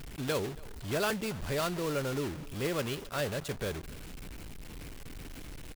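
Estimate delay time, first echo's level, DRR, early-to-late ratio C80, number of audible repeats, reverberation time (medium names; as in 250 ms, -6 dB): 276 ms, -23.0 dB, no reverb, no reverb, 1, no reverb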